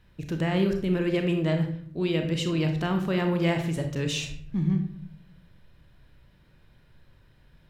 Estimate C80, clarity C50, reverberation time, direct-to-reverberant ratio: 11.0 dB, 7.0 dB, 0.55 s, 4.5 dB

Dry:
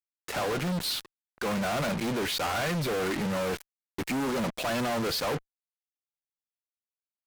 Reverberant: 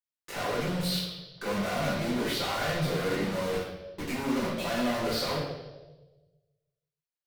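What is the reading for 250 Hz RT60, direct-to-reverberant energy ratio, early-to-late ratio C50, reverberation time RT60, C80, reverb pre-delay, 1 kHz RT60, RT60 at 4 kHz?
1.2 s, −6.5 dB, 1.5 dB, 1.2 s, 4.5 dB, 5 ms, 1.0 s, 1.1 s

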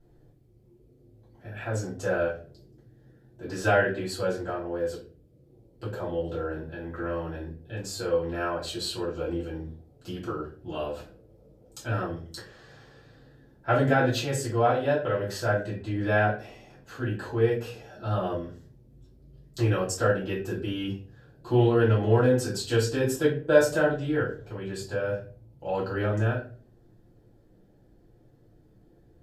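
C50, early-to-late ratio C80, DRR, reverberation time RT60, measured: 7.5 dB, 12.5 dB, −9.0 dB, 0.40 s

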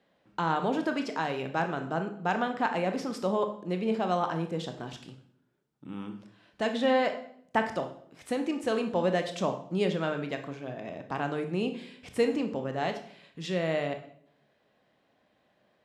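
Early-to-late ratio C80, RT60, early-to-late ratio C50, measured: 14.0 dB, 0.65 s, 10.0 dB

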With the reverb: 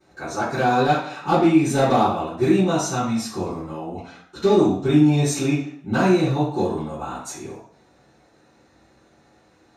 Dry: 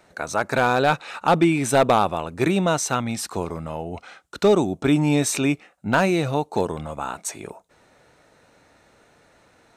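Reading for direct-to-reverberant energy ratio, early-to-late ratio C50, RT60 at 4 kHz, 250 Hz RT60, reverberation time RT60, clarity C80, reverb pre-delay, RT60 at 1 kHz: −15.0 dB, 3.0 dB, 0.60 s, 0.65 s, 0.60 s, 7.5 dB, 3 ms, 0.55 s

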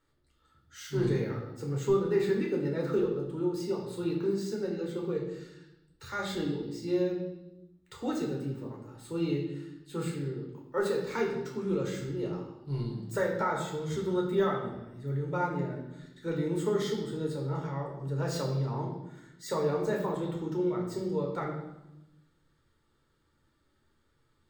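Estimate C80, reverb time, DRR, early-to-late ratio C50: 7.5 dB, 0.90 s, −2.0 dB, 5.0 dB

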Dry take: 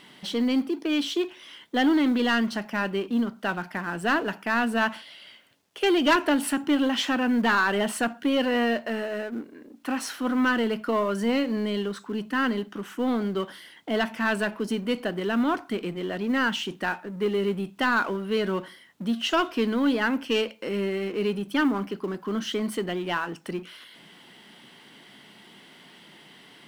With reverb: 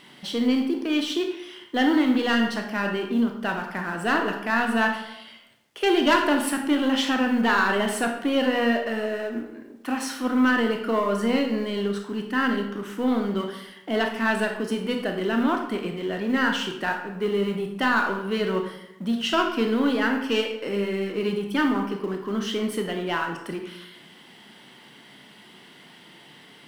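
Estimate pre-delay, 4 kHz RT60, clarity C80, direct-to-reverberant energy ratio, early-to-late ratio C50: 21 ms, 0.60 s, 9.0 dB, 3.0 dB, 6.5 dB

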